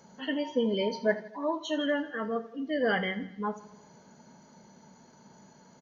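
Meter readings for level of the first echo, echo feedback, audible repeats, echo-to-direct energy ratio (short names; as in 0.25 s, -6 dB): -16.5 dB, 56%, 4, -15.0 dB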